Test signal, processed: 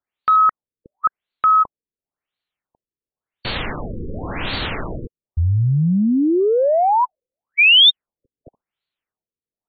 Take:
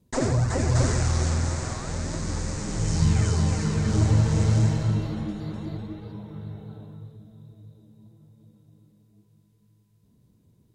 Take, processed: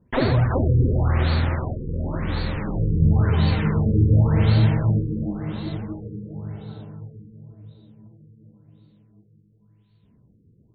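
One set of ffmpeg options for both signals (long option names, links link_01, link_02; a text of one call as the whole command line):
ffmpeg -i in.wav -af "crystalizer=i=4:c=0,acontrast=25,afftfilt=real='re*lt(b*sr/1024,490*pow(4600/490,0.5+0.5*sin(2*PI*0.93*pts/sr)))':imag='im*lt(b*sr/1024,490*pow(4600/490,0.5+0.5*sin(2*PI*0.93*pts/sr)))':win_size=1024:overlap=0.75,volume=-1dB" out.wav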